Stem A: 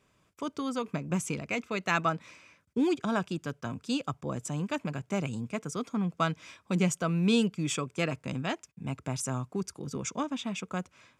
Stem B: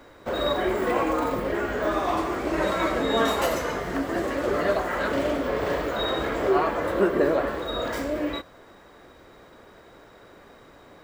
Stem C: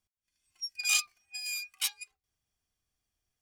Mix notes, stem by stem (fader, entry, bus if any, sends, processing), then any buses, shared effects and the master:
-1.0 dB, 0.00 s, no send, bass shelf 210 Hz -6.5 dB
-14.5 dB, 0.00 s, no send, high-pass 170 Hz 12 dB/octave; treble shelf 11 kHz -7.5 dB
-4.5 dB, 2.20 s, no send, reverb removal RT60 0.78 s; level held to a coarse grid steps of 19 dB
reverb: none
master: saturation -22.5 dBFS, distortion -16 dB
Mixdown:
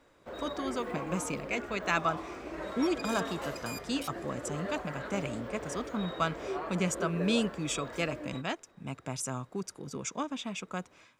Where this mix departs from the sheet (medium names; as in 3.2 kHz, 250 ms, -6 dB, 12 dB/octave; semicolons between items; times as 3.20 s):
stem B: missing high-pass 170 Hz 12 dB/octave; master: missing saturation -22.5 dBFS, distortion -16 dB